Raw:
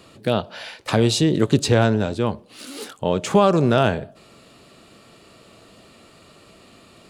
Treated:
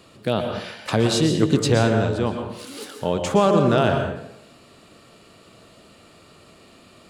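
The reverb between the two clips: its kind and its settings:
dense smooth reverb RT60 0.75 s, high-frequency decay 0.7×, pre-delay 105 ms, DRR 4.5 dB
level −2 dB

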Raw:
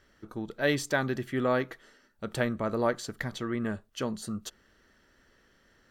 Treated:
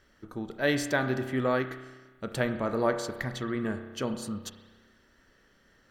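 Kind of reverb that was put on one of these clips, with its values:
spring reverb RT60 1.3 s, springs 31 ms, chirp 40 ms, DRR 8 dB

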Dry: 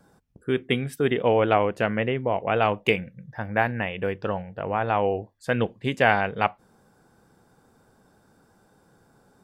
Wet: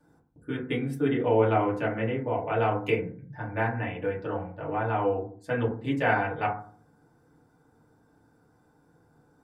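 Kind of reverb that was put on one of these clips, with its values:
feedback delay network reverb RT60 0.46 s, low-frequency decay 1.5×, high-frequency decay 0.3×, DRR −5.5 dB
level −12 dB

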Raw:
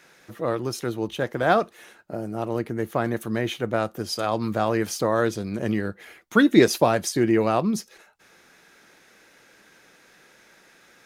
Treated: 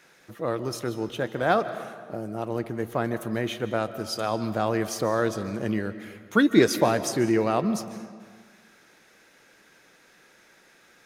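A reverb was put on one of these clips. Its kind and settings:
comb and all-pass reverb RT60 1.7 s, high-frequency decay 0.7×, pre-delay 105 ms, DRR 12 dB
level −2.5 dB

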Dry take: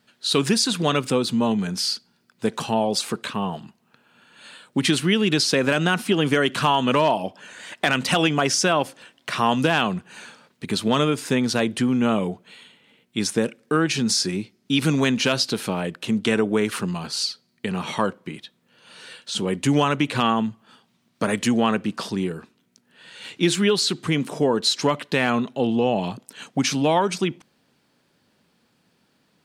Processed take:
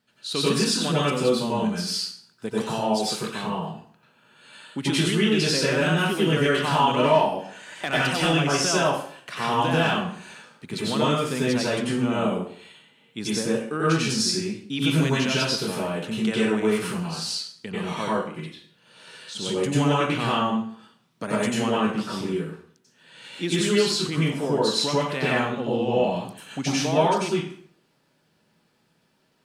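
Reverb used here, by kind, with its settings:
dense smooth reverb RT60 0.56 s, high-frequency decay 0.85×, pre-delay 80 ms, DRR −7 dB
level −9 dB

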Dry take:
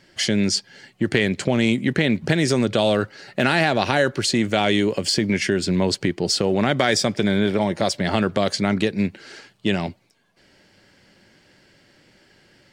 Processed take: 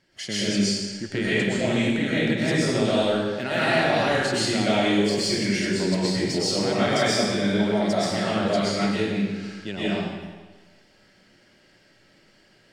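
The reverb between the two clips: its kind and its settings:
comb and all-pass reverb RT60 1.3 s, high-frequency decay 0.95×, pre-delay 85 ms, DRR −9.5 dB
level −12 dB

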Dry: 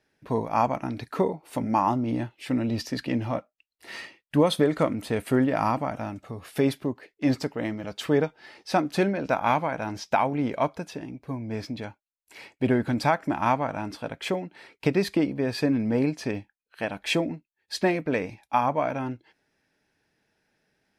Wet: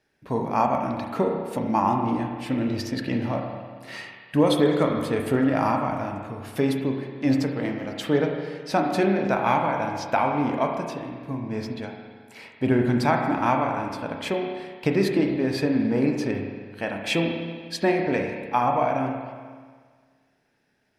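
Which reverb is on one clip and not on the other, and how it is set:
spring reverb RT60 1.7 s, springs 30/41 ms, chirp 50 ms, DRR 2 dB

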